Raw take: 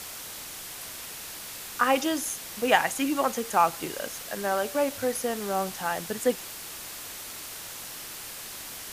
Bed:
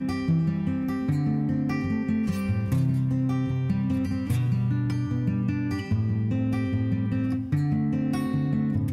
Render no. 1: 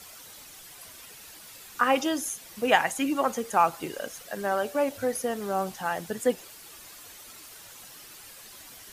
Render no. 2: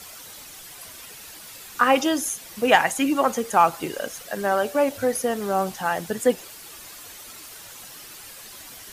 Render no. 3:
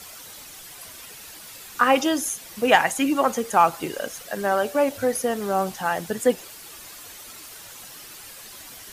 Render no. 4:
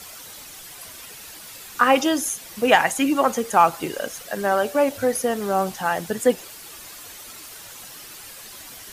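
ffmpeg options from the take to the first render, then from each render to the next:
-af "afftdn=nr=10:nf=-40"
-af "acontrast=31"
-af anull
-af "volume=1.19,alimiter=limit=0.708:level=0:latency=1"

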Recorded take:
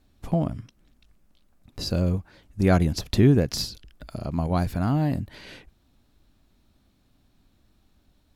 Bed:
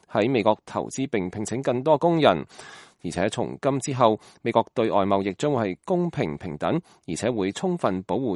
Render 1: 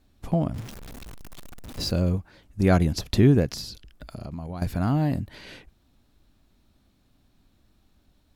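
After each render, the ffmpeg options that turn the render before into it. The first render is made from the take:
-filter_complex "[0:a]asettb=1/sr,asplit=3[s0][s1][s2];[s0]atrim=end=0.544[s3];[s1]atrim=start=0.54:end=1.91,asetpts=PTS-STARTPTS,afade=t=in:d=0.004:c=qsin,afade=t=out:st=1.366:d=0.004:c=qsin,aeval=exprs='val(0)+0.5*0.0178*sgn(val(0))':c=same[s4];[s2]atrim=start=1.906[s5];[s3][s4]acrossfade=d=0.004:c1=hsin:c2=qsin[s6];[s6][s5]acrossfade=d=0.004:c1=qsin:c2=hsin,asettb=1/sr,asplit=3[s7][s8][s9];[s7]atrim=end=3.494[s10];[s8]atrim=start=3.49:end=4.62,asetpts=PTS-STARTPTS,afade=t=in:d=0.004:c=qsin,afade=t=out:st=1.126:d=0.004:c=qsin,acompressor=threshold=0.0282:ratio=6:attack=3.2:release=140:knee=1:detection=peak[s11];[s9]atrim=start=4.616[s12];[s10][s11]acrossfade=d=0.004:c1=hsin:c2=qsin[s13];[s13][s12]acrossfade=d=0.004:c1=qsin:c2=hsin"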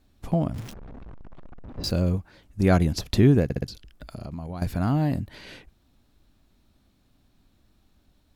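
-filter_complex "[0:a]asettb=1/sr,asplit=3[s0][s1][s2];[s0]atrim=end=0.734[s3];[s1]atrim=start=0.73:end=1.84,asetpts=PTS-STARTPTS,afade=t=in:d=0.004:c=qsin,afade=t=out:st=1.106:d=0.004:c=qsin,lowpass=1200[s4];[s2]atrim=start=1.836[s5];[s3][s4]acrossfade=d=0.004:c1=hsin:c2=qsin[s6];[s6][s5]acrossfade=d=0.004:c1=qsin:c2=hsin,asplit=5[s7][s8][s9][s10][s11];[s7]atrim=end=3.502[s12];[s8]atrim=start=3.438:end=3.502[s13];[s9]atrim=start=3.438:end=3.502[s14];[s10]atrim=start=3.438:end=3.502[s15];[s11]atrim=start=3.678[s16];[s12][s13]acrossfade=d=0.004:c1=hsin:c2=hsin[s17];[s17][s14]acrossfade=d=0.004:c1=hsin:c2=hsin[s18];[s18][s15]acrossfade=d=0.004:c1=hsin:c2=hsin[s19];[s19][s16]acrossfade=d=0.004:c1=hsin:c2=hsin"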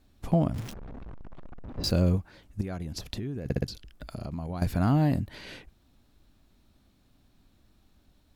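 -filter_complex "[0:a]asplit=3[s0][s1][s2];[s0]afade=t=out:st=2.6:d=0.02[s3];[s1]acompressor=threshold=0.0224:ratio=5:attack=3.2:release=140:knee=1:detection=peak,afade=t=in:st=2.6:d=0.02,afade=t=out:st=3.45:d=0.02[s4];[s2]afade=t=in:st=3.45:d=0.02[s5];[s3][s4][s5]amix=inputs=3:normalize=0"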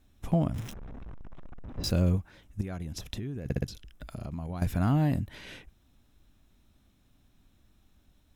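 -af "equalizer=f=500:w=0.42:g=-3.5,bandreject=f=4500:w=5.3"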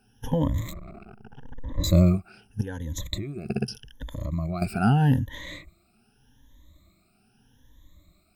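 -af "afftfilt=real='re*pow(10,24/40*sin(2*PI*(1.1*log(max(b,1)*sr/1024/100)/log(2)-(0.82)*(pts-256)/sr)))':imag='im*pow(10,24/40*sin(2*PI*(1.1*log(max(b,1)*sr/1024/100)/log(2)-(0.82)*(pts-256)/sr)))':win_size=1024:overlap=0.75"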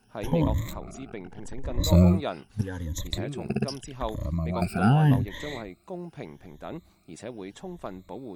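-filter_complex "[1:a]volume=0.2[s0];[0:a][s0]amix=inputs=2:normalize=0"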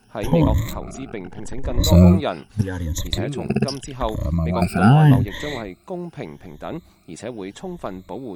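-af "volume=2.37,alimiter=limit=0.794:level=0:latency=1"

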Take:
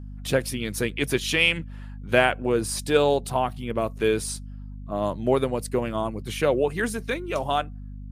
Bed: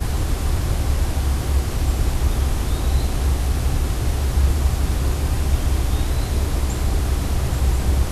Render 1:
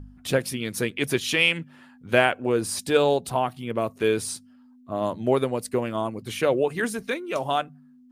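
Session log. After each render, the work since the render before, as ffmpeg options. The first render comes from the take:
-af "bandreject=f=50:t=h:w=4,bandreject=f=100:t=h:w=4,bandreject=f=150:t=h:w=4,bandreject=f=200:t=h:w=4"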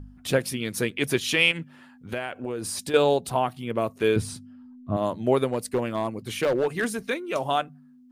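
-filter_complex "[0:a]asettb=1/sr,asplit=3[s0][s1][s2];[s0]atrim=end=1.514[s3];[s1]atrim=start=1.51:end=2.94,asetpts=PTS-STARTPTS,afade=t=in:d=0.004:c=qsin,afade=t=out:st=1.426:d=0.004:c=qsin,acompressor=threshold=0.0447:ratio=6:attack=3.2:release=140:knee=1:detection=peak[s4];[s2]atrim=start=2.936[s5];[s3][s4]acrossfade=d=0.004:c1=hsin:c2=qsin[s6];[s6][s5]acrossfade=d=0.004:c1=qsin:c2=hsin,asettb=1/sr,asplit=3[s7][s8][s9];[s7]atrim=end=4.164[s10];[s8]atrim=start=4.16:end=4.97,asetpts=PTS-STARTPTS,afade=t=in:d=0.004:c=qsin,afade=t=out:st=0.806:d=0.004:c=qsin,bass=f=250:g=13,treble=f=4000:g=-7[s11];[s9]atrim=start=4.966[s12];[s10][s11]acrossfade=d=0.004:c1=hsin:c2=qsin[s13];[s13][s12]acrossfade=d=0.004:c1=qsin:c2=hsin,asettb=1/sr,asplit=3[s14][s15][s16];[s14]atrim=end=5.524[s17];[s15]atrim=start=5.52:end=6.99,asetpts=PTS-STARTPTS,afade=t=in:d=0.004:c=qsin,afade=t=out:st=1.466:d=0.004:c=qsin,asoftclip=type=hard:threshold=0.119[s18];[s16]atrim=start=6.986[s19];[s17][s18]acrossfade=d=0.004:c1=hsin:c2=qsin[s20];[s20][s19]acrossfade=d=0.004:c1=qsin:c2=hsin"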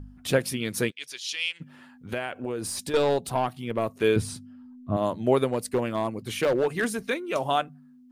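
-filter_complex "[0:a]asplit=3[s0][s1][s2];[s0]afade=t=out:st=0.9:d=0.02[s3];[s1]bandpass=f=5000:t=q:w=1.8,afade=t=in:st=0.9:d=0.02,afade=t=out:st=1.6:d=0.02[s4];[s2]afade=t=in:st=1.6:d=0.02[s5];[s3][s4][s5]amix=inputs=3:normalize=0,asettb=1/sr,asplit=3[s6][s7][s8];[s6]atrim=end=2.674[s9];[s7]atrim=start=2.67:end=3.94,asetpts=PTS-STARTPTS,afade=t=in:d=0.004:c=qsin,afade=t=out:st=1.266:d=0.004:c=qsin,aeval=exprs='(tanh(6.31*val(0)+0.3)-tanh(0.3))/6.31':c=same[s10];[s8]atrim=start=3.936[s11];[s9][s10]acrossfade=d=0.004:c1=hsin:c2=qsin[s12];[s12][s11]acrossfade=d=0.004:c1=qsin:c2=hsin"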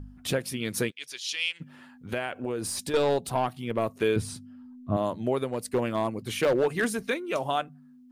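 -af "alimiter=limit=0.168:level=0:latency=1:release=408"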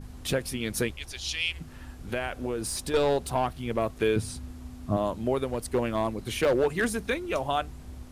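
-filter_complex "[1:a]volume=0.0596[s0];[0:a][s0]amix=inputs=2:normalize=0"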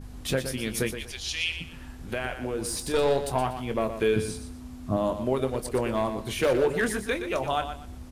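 -filter_complex "[0:a]asplit=2[s0][s1];[s1]adelay=23,volume=0.282[s2];[s0][s2]amix=inputs=2:normalize=0,aecho=1:1:120|240|360:0.335|0.0837|0.0209"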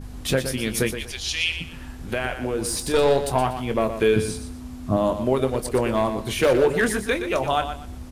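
-af "volume=1.78"

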